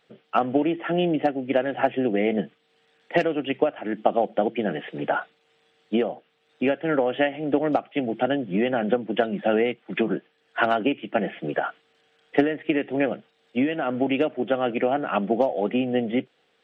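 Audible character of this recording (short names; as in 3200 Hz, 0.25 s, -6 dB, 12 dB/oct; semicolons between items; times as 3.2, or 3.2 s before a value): noise floor -67 dBFS; spectral tilt -4.5 dB/oct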